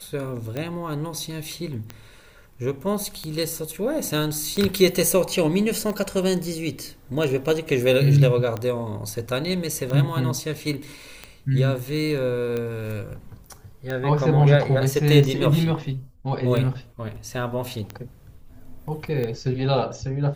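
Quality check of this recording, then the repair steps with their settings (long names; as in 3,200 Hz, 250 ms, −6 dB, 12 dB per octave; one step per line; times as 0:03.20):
scratch tick 45 rpm −16 dBFS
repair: click removal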